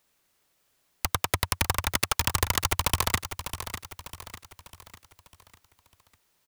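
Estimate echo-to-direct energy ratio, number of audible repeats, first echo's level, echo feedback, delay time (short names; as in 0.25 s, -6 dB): -9.5 dB, 4, -10.5 dB, 46%, 0.599 s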